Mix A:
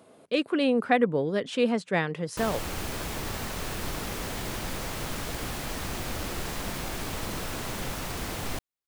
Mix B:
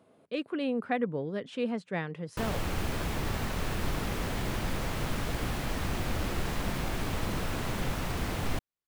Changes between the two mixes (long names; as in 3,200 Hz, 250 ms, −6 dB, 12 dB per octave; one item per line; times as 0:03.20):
speech −8.0 dB
master: add bass and treble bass +4 dB, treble −6 dB